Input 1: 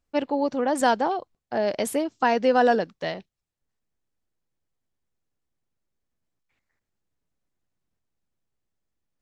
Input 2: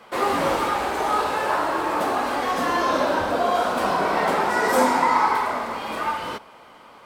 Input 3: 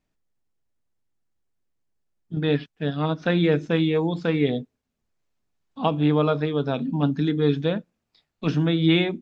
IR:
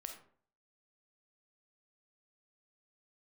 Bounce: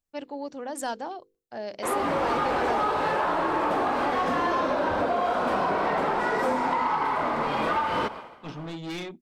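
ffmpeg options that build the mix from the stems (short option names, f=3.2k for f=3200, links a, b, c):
-filter_complex "[0:a]bandreject=f=50:t=h:w=6,bandreject=f=100:t=h:w=6,bandreject=f=150:t=h:w=6,bandreject=f=200:t=h:w=6,bandreject=f=250:t=h:w=6,bandreject=f=300:t=h:w=6,bandreject=f=350:t=h:w=6,bandreject=f=400:t=h:w=6,bandreject=f=450:t=h:w=6,bandreject=f=500:t=h:w=6,crystalizer=i=1.5:c=0,volume=-10.5dB[a];[1:a]aemphasis=mode=reproduction:type=75kf,dynaudnorm=f=170:g=7:m=16dB,adelay=1700,volume=-2dB[b];[2:a]asoftclip=type=tanh:threshold=-23.5dB,equalizer=f=73:w=0.3:g=-5,volume=-5dB[c];[b][c]amix=inputs=2:normalize=0,agate=range=-33dB:threshold=-32dB:ratio=3:detection=peak,acompressor=threshold=-21dB:ratio=6,volume=0dB[d];[a][d]amix=inputs=2:normalize=0,asoftclip=type=tanh:threshold=-17dB"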